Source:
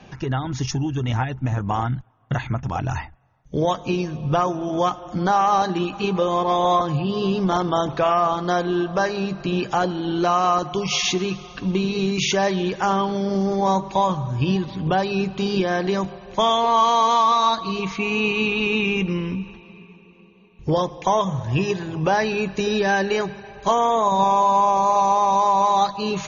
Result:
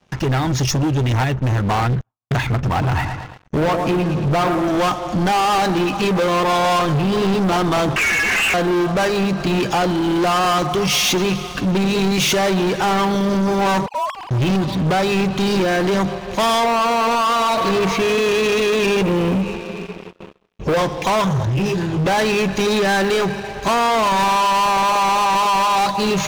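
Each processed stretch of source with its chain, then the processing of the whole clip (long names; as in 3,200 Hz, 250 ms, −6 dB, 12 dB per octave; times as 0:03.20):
0:02.53–0:04.68: treble cut that deepens with the level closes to 1,300 Hz, closed at −17 dBFS + repeating echo 113 ms, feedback 57%, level −11 dB
0:07.96–0:08.54: sign of each sample alone + voice inversion scrambler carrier 2,900 Hz + string-ensemble chorus
0:13.86–0:14.31: three sine waves on the formant tracks + low-pass that shuts in the quiet parts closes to 1,100 Hz, open at −13.5 dBFS + downward compressor 2 to 1, threshold −41 dBFS
0:16.63–0:20.77: parametric band 540 Hz +13.5 dB 1.2 octaves + downward compressor 4 to 1, threshold −17 dBFS
0:21.45–0:22.06: low-shelf EQ 160 Hz +7 dB + downward compressor 4 to 1, threshold −20 dBFS + micro pitch shift up and down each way 44 cents
whole clip: leveller curve on the samples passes 5; noise gate with hold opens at −17 dBFS; level −6.5 dB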